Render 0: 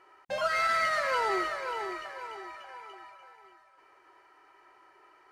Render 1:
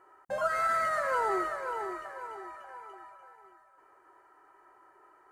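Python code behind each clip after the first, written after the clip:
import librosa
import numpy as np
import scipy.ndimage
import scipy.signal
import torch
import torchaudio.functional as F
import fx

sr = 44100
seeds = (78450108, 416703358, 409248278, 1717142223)

y = fx.band_shelf(x, sr, hz=3500.0, db=-12.5, octaves=1.7)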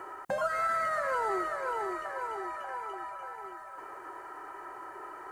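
y = fx.band_squash(x, sr, depth_pct=70)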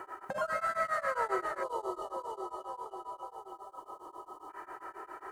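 y = fx.reverse_delay_fb(x, sr, ms=114, feedback_pct=71, wet_db=-8.5)
y = fx.spec_box(y, sr, start_s=1.63, length_s=2.87, low_hz=1300.0, high_hz=2900.0, gain_db=-23)
y = y * np.abs(np.cos(np.pi * 7.4 * np.arange(len(y)) / sr))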